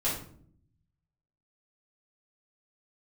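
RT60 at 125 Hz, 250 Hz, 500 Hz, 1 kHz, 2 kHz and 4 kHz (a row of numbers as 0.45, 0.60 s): 1.4, 0.95, 0.70, 0.50, 0.40, 0.35 s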